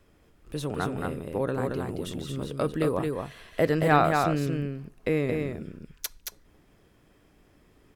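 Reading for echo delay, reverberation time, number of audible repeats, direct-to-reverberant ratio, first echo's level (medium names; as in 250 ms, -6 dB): 224 ms, no reverb, 1, no reverb, -4.0 dB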